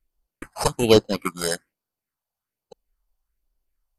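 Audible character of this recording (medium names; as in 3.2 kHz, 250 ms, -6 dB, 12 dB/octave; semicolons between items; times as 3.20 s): aliases and images of a low sample rate 3.5 kHz, jitter 0%; phasing stages 4, 1.2 Hz, lowest notch 300–2200 Hz; MP2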